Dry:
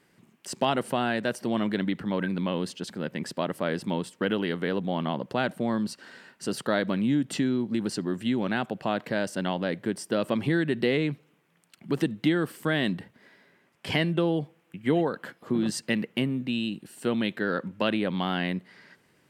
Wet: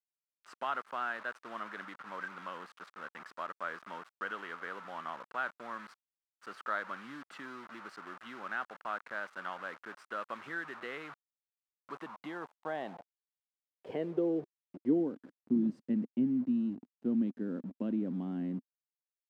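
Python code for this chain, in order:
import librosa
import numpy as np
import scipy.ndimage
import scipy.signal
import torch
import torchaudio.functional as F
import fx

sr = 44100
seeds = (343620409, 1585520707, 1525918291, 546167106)

y = fx.quant_dither(x, sr, seeds[0], bits=6, dither='none')
y = fx.filter_sweep_bandpass(y, sr, from_hz=1300.0, to_hz=250.0, start_s=11.61, end_s=15.36, q=3.7)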